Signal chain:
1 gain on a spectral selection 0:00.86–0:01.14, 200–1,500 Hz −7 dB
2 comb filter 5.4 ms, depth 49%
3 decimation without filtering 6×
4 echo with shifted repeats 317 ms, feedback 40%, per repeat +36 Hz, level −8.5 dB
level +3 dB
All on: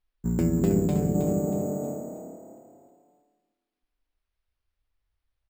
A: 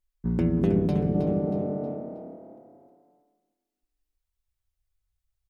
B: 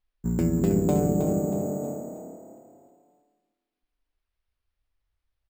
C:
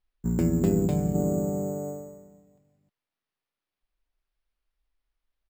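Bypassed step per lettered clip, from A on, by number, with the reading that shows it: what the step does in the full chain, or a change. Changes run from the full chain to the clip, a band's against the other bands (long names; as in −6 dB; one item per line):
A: 3, distortion level −18 dB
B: 1, 1 kHz band +2.5 dB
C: 4, echo-to-direct ratio −7.5 dB to none audible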